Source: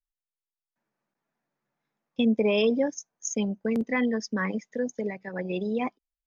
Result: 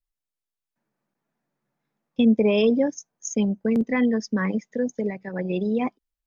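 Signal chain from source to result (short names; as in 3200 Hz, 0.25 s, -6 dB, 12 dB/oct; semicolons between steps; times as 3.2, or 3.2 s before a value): low shelf 430 Hz +7 dB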